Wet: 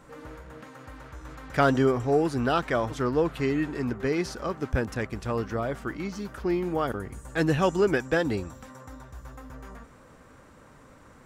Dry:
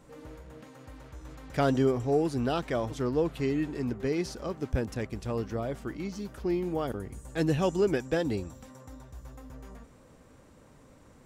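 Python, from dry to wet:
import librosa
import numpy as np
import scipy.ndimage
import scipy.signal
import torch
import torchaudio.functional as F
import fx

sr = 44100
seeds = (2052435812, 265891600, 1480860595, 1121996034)

y = fx.peak_eq(x, sr, hz=1400.0, db=8.0, octaves=1.3)
y = y * 10.0 ** (2.0 / 20.0)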